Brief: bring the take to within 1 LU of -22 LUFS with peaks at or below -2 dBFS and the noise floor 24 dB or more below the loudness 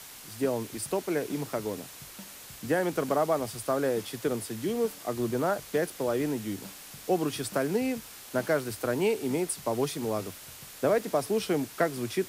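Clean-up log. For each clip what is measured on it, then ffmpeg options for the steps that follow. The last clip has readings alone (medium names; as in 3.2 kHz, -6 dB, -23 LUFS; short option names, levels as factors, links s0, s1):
noise floor -47 dBFS; noise floor target -54 dBFS; loudness -30.0 LUFS; peak level -13.5 dBFS; loudness target -22.0 LUFS
-> -af "afftdn=nr=7:nf=-47"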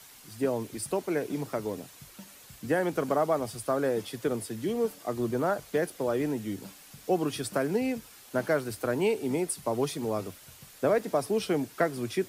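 noise floor -52 dBFS; noise floor target -54 dBFS
-> -af "afftdn=nr=6:nf=-52"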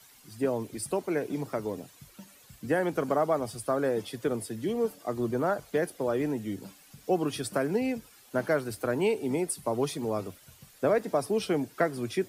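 noise floor -57 dBFS; loudness -30.0 LUFS; peak level -13.5 dBFS; loudness target -22.0 LUFS
-> -af "volume=2.51"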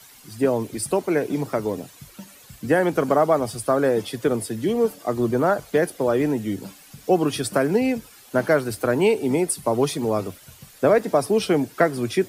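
loudness -22.0 LUFS; peak level -5.5 dBFS; noise floor -49 dBFS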